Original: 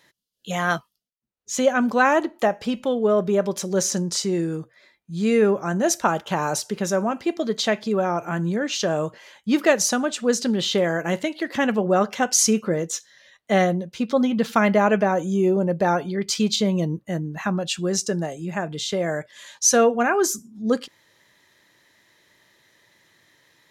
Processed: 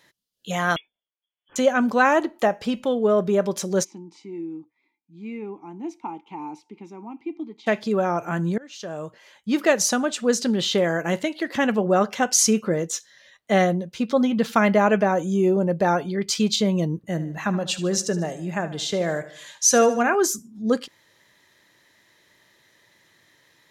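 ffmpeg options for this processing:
-filter_complex "[0:a]asettb=1/sr,asplit=3[a][b][c];[a]atrim=end=0.764[d];[b]atrim=start=0.76:end=1.56,asetpts=PTS-STARTPTS,afade=t=in:d=0.004:c=qsin,afade=t=out:st=0.796:d=0.004:c=qsin,lowpass=f=3k:t=q:w=0.5098,lowpass=f=3k:t=q:w=0.6013,lowpass=f=3k:t=q:w=0.9,lowpass=f=3k:t=q:w=2.563,afreqshift=-3500[e];[c]atrim=start=1.556[f];[d][e]acrossfade=d=0.004:c1=hsin:c2=qsin[g];[g][f]acrossfade=d=0.004:c1=qsin:c2=hsin,asplit=3[h][i][j];[h]afade=t=out:st=3.83:d=0.02[k];[i]asplit=3[l][m][n];[l]bandpass=f=300:t=q:w=8,volume=0dB[o];[m]bandpass=f=870:t=q:w=8,volume=-6dB[p];[n]bandpass=f=2.24k:t=q:w=8,volume=-9dB[q];[o][p][q]amix=inputs=3:normalize=0,afade=t=in:st=3.83:d=0.02,afade=t=out:st=7.66:d=0.02[r];[j]afade=t=in:st=7.66:d=0.02[s];[k][r][s]amix=inputs=3:normalize=0,asettb=1/sr,asplit=3[t][u][v];[t]atrim=end=16.964[w];[u]atrim=start=16.96:end=20.15,asetpts=PTS-STARTPTS,afade=t=in:d=0.004:c=qsin,afade=t=out:st=3.186:d=0.004:c=qsin,aecho=1:1:75|150|225|300:0.188|0.0866|0.0399|0.0183,atrim=end_sample=140679[x];[v]atrim=start=20.146[y];[w][x]acrossfade=d=0.004:c1=hsin:c2=qsin[z];[z][y]acrossfade=d=0.004:c1=qsin:c2=hsin,asplit=2[aa][ab];[aa]atrim=end=8.58,asetpts=PTS-STARTPTS,afade=t=out:st=8.576:d=0.004:c=hsin:silence=0.0794328[ac];[ab]atrim=start=8.58,asetpts=PTS-STARTPTS,afade=t=in:d=1.28:silence=0.0794328[ad];[ac][ad]concat=n=2:v=0:a=1"

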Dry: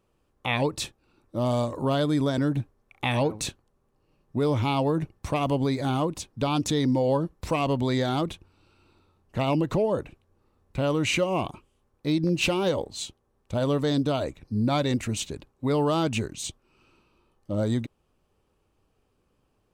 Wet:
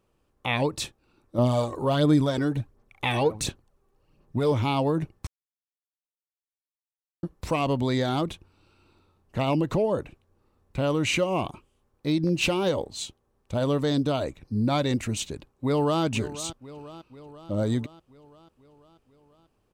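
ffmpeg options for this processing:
-filter_complex "[0:a]asettb=1/sr,asplit=3[a][b][c];[a]atrim=end=1.384[d];[b]atrim=start=1.38:end=4.52,asetpts=PTS-STARTPTS,afade=t=in:d=0.004:c=qsin,afade=t=out:st=3.136:d=0.004:c=qsin,aphaser=in_gain=1:out_gain=1:delay=2.7:decay=0.48:speed=1.4:type=sinusoidal[e];[c]atrim=start=4.516[f];[d][e]acrossfade=d=0.004:c1=hsin:c2=qsin[g];[g][f]acrossfade=d=0.004:c1=qsin:c2=hsin,asplit=2[h][i];[i]afade=t=in:st=15.27:d=0.01,afade=t=out:st=16.03:d=0.01,aecho=0:1:490|980|1470|1960|2450|2940|3430:0.177828|0.115588|0.0751323|0.048836|0.0317434|0.0206332|0.0134116[j];[h][j]amix=inputs=2:normalize=0,asplit=3[k][l][m];[k]atrim=end=5.27,asetpts=PTS-STARTPTS,afade=t=out:st=5.266:d=0.004:c=hsin[n];[l]atrim=start=5.27:end=7.23,asetpts=PTS-STARTPTS,volume=0[o];[m]atrim=start=7.23,asetpts=PTS-STARTPTS,afade=t=in:d=0.004:c=hsin[p];[n][o][p]concat=n=3:v=0:a=1"

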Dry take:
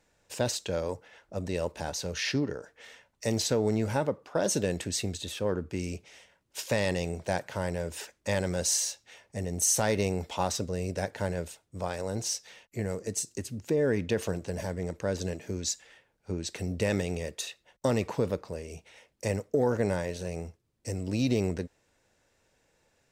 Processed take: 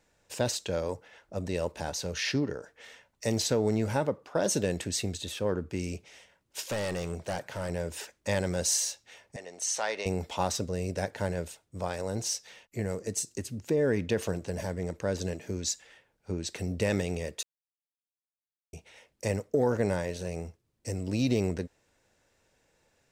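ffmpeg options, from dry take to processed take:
-filter_complex "[0:a]asettb=1/sr,asplit=3[a][b][c];[a]atrim=end=6.644[d];[b]atrim=start=6.64:end=7.7,asetpts=PTS-STARTPTS,afade=t=in:d=0.004:c=qsin,afade=t=out:st=1.056:d=0.004:c=qsin,asoftclip=type=hard:threshold=-28dB[e];[c]atrim=start=7.696[f];[d][e]acrossfade=d=0.004:c1=hsin:c2=qsin[g];[g][f]acrossfade=d=0.004:c1=qsin:c2=hsin,asettb=1/sr,asplit=3[h][i][j];[h]atrim=end=9.364[k];[i]atrim=start=9.36:end=10.06,asetpts=PTS-STARTPTS,afade=t=in:d=0.004:c=qsin,afade=t=out:st=0.696:d=0.004:c=qsin,highpass=670,lowpass=5.3k[l];[j]atrim=start=10.056[m];[k][l]acrossfade=d=0.004:c1=hsin:c2=qsin[n];[n][m]acrossfade=d=0.004:c1=qsin:c2=hsin,asplit=3[o][p][q];[o]atrim=end=17.43,asetpts=PTS-STARTPTS,afade=t=out:st=17.426:d=0.004:c=hsin[r];[p]atrim=start=17.43:end=18.73,asetpts=PTS-STARTPTS,volume=0[s];[q]atrim=start=18.73,asetpts=PTS-STARTPTS,afade=t=in:d=0.004:c=hsin[t];[r][s][t]concat=n=3:v=0:a=1"

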